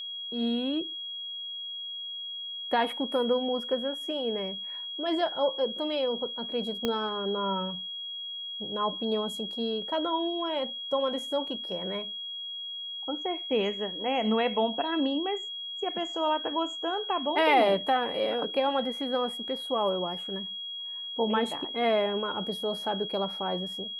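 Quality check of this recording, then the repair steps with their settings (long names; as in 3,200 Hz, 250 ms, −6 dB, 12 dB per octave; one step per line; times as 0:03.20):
whistle 3,300 Hz −35 dBFS
0:06.85: click −14 dBFS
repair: click removal
notch filter 3,300 Hz, Q 30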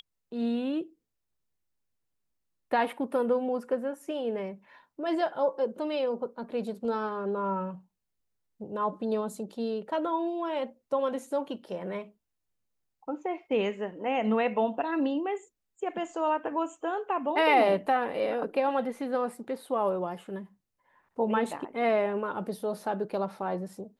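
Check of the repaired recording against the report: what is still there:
0:06.85: click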